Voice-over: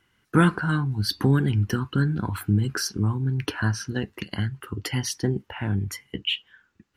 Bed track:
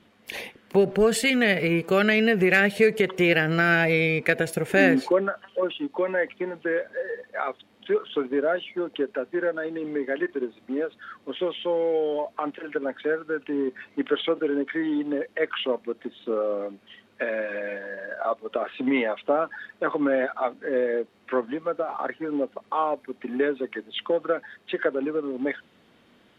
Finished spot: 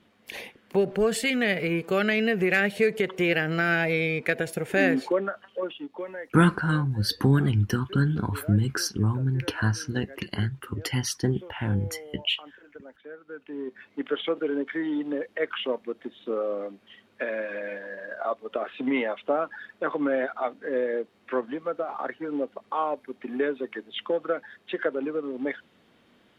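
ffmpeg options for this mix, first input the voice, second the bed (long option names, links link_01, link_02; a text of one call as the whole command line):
ffmpeg -i stem1.wav -i stem2.wav -filter_complex "[0:a]adelay=6000,volume=-0.5dB[link_01];[1:a]volume=12dB,afade=type=out:start_time=5.41:duration=0.95:silence=0.188365,afade=type=in:start_time=13.1:duration=1.26:silence=0.16788[link_02];[link_01][link_02]amix=inputs=2:normalize=0" out.wav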